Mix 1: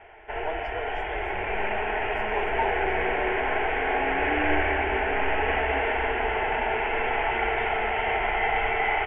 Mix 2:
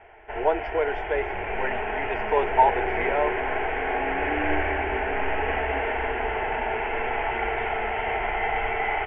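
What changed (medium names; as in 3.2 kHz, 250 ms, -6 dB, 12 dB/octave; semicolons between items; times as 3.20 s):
speech +12.0 dB; master: add distance through air 200 m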